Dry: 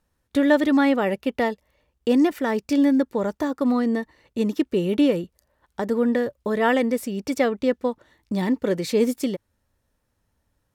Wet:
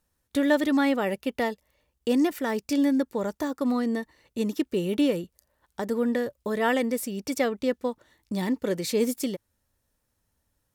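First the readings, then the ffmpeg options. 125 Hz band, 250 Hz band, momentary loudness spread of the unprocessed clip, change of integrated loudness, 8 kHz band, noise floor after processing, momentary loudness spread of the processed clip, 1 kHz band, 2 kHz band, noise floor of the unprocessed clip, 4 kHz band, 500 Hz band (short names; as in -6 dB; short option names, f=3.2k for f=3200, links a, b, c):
-4.5 dB, -4.5 dB, 10 LU, -4.5 dB, +2.5 dB, -77 dBFS, 10 LU, -4.0 dB, -3.5 dB, -73 dBFS, -1.5 dB, -4.5 dB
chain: -af "highshelf=f=5k:g=9.5,volume=-4.5dB"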